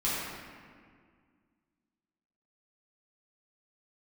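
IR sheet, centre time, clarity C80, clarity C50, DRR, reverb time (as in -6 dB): 0.125 s, -0.5 dB, -3.0 dB, -9.5 dB, 1.9 s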